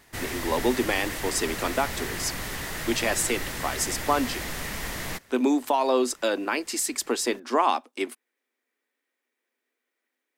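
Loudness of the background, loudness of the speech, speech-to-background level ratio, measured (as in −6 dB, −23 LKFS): −32.5 LKFS, −27.0 LKFS, 5.5 dB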